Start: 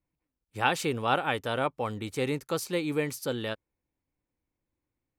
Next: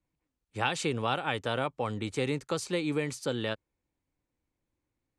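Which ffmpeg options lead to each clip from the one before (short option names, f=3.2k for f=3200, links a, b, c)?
-filter_complex "[0:a]lowpass=f=8.7k:w=0.5412,lowpass=f=8.7k:w=1.3066,equalizer=f=5.3k:w=3.7:g=-3,acrossover=split=140|3000[a][b][c];[b]acompressor=threshold=-28dB:ratio=6[d];[a][d][c]amix=inputs=3:normalize=0,volume=1.5dB"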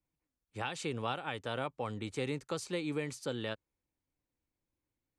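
-af "alimiter=limit=-16.5dB:level=0:latency=1:release=328,volume=-5.5dB"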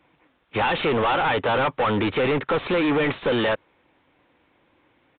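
-filter_complex "[0:a]asplit=2[a][b];[b]highpass=f=720:p=1,volume=32dB,asoftclip=type=tanh:threshold=-21.5dB[c];[a][c]amix=inputs=2:normalize=0,lowpass=f=1.9k:p=1,volume=-6dB,asplit=2[d][e];[e]aeval=exprs='0.0282*(abs(mod(val(0)/0.0282+3,4)-2)-1)':c=same,volume=-10dB[f];[d][f]amix=inputs=2:normalize=0,aresample=8000,aresample=44100,volume=7.5dB"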